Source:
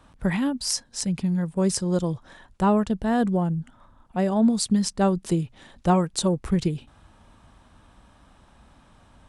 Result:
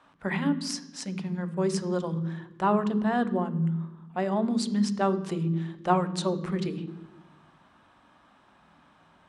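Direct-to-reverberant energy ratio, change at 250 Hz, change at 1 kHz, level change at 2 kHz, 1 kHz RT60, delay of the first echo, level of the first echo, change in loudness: 10.0 dB, −4.5 dB, −1.0 dB, 0.0 dB, 1.0 s, no echo audible, no echo audible, −4.0 dB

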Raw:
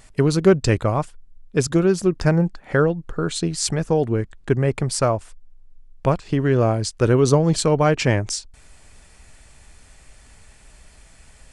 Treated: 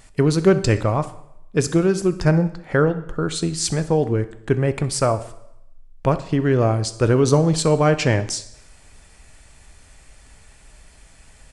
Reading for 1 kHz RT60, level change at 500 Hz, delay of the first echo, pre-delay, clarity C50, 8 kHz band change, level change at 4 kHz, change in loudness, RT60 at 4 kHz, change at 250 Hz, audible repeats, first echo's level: 0.80 s, 0.0 dB, 64 ms, 4 ms, 14.5 dB, +0.5 dB, 0.0 dB, +0.5 dB, 0.75 s, +0.5 dB, 1, −20.0 dB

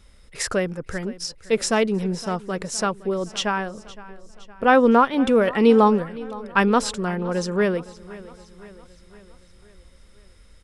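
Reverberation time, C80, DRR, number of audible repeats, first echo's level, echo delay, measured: no reverb audible, no reverb audible, no reverb audible, 4, −19.0 dB, 514 ms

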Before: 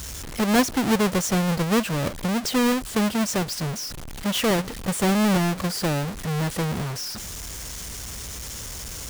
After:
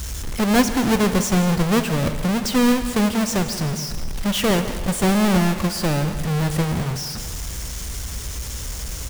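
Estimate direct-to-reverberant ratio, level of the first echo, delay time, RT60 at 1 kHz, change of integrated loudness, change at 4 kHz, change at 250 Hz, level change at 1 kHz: 8.0 dB, −14.0 dB, 170 ms, 2.2 s, +3.0 dB, +2.0 dB, +3.5 dB, +2.5 dB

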